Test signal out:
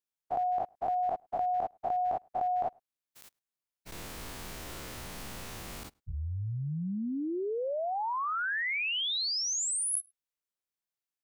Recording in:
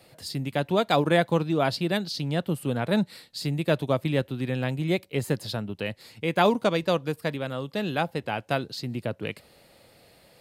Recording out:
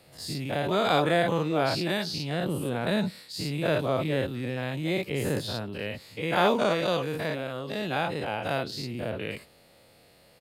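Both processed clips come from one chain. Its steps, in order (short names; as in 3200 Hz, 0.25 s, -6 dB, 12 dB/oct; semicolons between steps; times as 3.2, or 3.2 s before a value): spectral dilation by 0.12 s; outdoor echo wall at 18 m, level -30 dB; gain -6.5 dB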